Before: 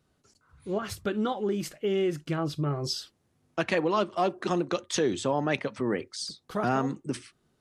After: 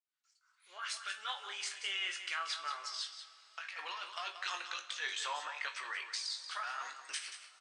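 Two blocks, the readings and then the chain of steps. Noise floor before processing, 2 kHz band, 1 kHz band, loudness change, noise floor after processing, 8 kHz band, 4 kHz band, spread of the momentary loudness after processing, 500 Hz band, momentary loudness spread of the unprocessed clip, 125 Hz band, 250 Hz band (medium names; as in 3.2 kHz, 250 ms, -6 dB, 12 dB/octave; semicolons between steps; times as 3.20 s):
-72 dBFS, -2.5 dB, -9.5 dB, -9.5 dB, -76 dBFS, -4.5 dB, -0.5 dB, 7 LU, -28.0 dB, 9 LU, under -40 dB, under -40 dB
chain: fade-in on the opening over 1.46 s; Bessel high-pass 2.1 kHz, order 4; treble shelf 4 kHz -9.5 dB; compressor with a negative ratio -47 dBFS, ratio -1; doubling 20 ms -7.5 dB; delay 182 ms -10 dB; two-slope reverb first 0.43 s, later 4.5 s, from -17 dB, DRR 8.5 dB; trim +6.5 dB; MP3 96 kbps 22.05 kHz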